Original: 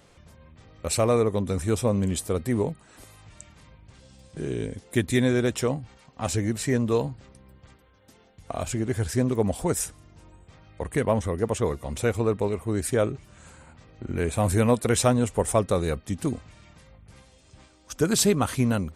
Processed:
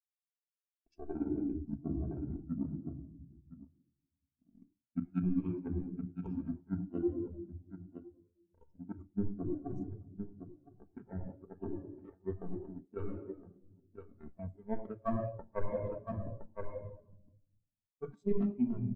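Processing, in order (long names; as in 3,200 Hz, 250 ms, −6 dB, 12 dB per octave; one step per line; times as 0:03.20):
pitch glide at a constant tempo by −8 semitones ending unshifted
power curve on the samples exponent 3
high-frequency loss of the air 78 metres
single-tap delay 1,015 ms −12.5 dB
rectangular room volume 3,200 cubic metres, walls mixed, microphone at 1.6 metres
reversed playback
downward compressor 6 to 1, threshold −45 dBFS, peak gain reduction 22.5 dB
reversed playback
high-shelf EQ 4,300 Hz +10 dB
notch filter 460 Hz, Q 12
every bin expanded away from the loudest bin 2.5 to 1
level +8.5 dB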